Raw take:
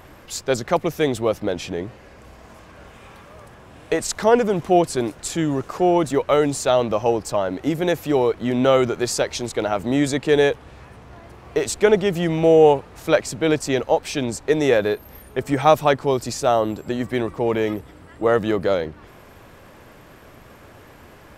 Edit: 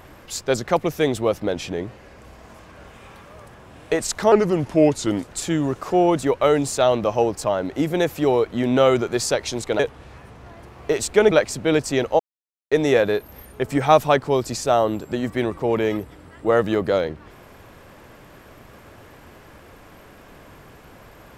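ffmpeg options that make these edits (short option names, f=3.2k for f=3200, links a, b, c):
-filter_complex "[0:a]asplit=7[a][b][c][d][e][f][g];[a]atrim=end=4.324[h];[b]atrim=start=4.32:end=5.15,asetpts=PTS-STARTPTS,asetrate=38367,aresample=44100,atrim=end_sample=42072,asetpts=PTS-STARTPTS[i];[c]atrim=start=5.146:end=9.672[j];[d]atrim=start=10.458:end=11.982[k];[e]atrim=start=13.078:end=13.96,asetpts=PTS-STARTPTS,afade=t=out:st=0.878:d=0.004:c=hsin[l];[f]atrim=start=13.96:end=14.48,asetpts=PTS-STARTPTS,volume=0[m];[g]atrim=start=14.48,asetpts=PTS-STARTPTS,afade=t=in:d=0.004:c=hsin[n];[h][i]acrossfade=d=0.004:c1=hsin:c2=hsin[o];[o][j]acrossfade=d=0.004:c1=hsin:c2=hsin[p];[p][k]acrossfade=d=0.004:c1=hsin:c2=hsin[q];[l][m][n]concat=n=3:v=0:a=1[r];[q][r]acrossfade=d=0.004:c1=hsin:c2=hsin"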